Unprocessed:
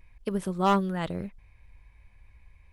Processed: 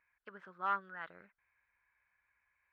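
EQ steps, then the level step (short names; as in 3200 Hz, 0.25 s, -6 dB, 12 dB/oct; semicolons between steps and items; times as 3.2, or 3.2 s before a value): band-pass 1500 Hz, Q 4.9; air absorption 120 m; +1.0 dB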